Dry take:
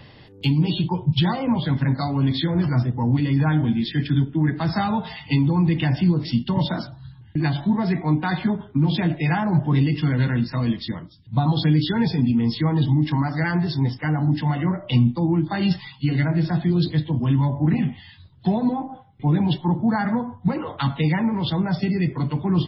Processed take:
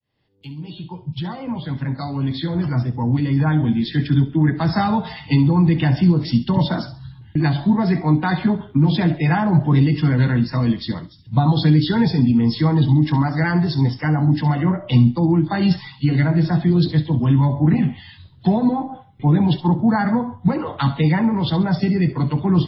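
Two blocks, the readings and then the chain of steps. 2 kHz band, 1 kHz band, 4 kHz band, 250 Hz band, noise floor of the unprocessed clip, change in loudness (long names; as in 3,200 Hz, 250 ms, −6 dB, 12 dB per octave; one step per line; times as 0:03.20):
+2.0 dB, +3.5 dB, 0.0 dB, +3.5 dB, −47 dBFS, +3.5 dB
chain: fade in at the beginning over 4.34 s
dynamic equaliser 2,800 Hz, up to −5 dB, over −46 dBFS, Q 1.7
delay with a high-pass on its return 67 ms, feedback 32%, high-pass 2,800 Hz, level −10.5 dB
level +4 dB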